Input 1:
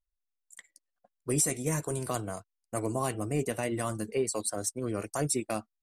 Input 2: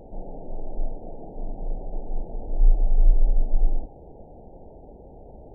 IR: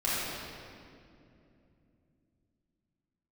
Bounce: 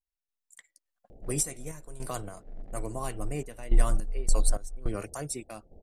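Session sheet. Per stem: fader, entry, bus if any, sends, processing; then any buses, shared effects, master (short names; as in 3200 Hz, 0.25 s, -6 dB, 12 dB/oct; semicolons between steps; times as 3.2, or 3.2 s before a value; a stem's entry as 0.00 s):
+0.5 dB, 0.00 s, no send, dry
-4.0 dB, 1.10 s, no send, Wiener smoothing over 41 samples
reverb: off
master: bell 270 Hz -3.5 dB 1.6 oct; random-step tremolo 3.5 Hz, depth 85%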